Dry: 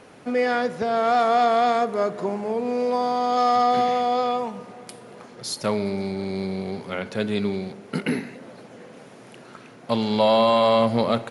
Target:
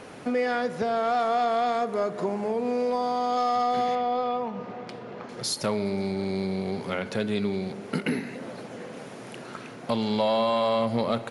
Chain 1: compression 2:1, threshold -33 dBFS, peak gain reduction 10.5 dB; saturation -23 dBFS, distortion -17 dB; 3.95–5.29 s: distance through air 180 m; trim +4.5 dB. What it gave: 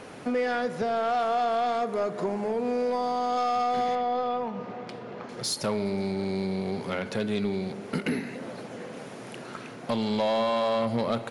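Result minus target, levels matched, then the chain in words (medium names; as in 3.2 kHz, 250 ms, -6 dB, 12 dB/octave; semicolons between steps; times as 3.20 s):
saturation: distortion +12 dB
compression 2:1, threshold -33 dBFS, peak gain reduction 10.5 dB; saturation -15.5 dBFS, distortion -30 dB; 3.95–5.29 s: distance through air 180 m; trim +4.5 dB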